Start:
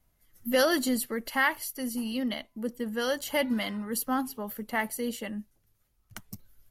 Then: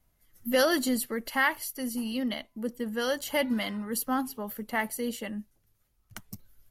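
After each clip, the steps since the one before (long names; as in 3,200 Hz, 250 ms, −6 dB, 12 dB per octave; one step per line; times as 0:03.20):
no processing that can be heard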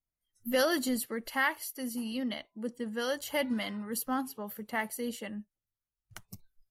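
noise reduction from a noise print of the clip's start 20 dB
level −3.5 dB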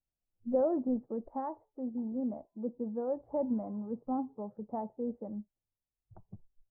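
Butterworth low-pass 870 Hz 36 dB per octave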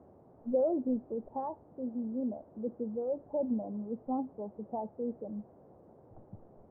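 spectral envelope exaggerated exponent 1.5
noise in a band 69–690 Hz −58 dBFS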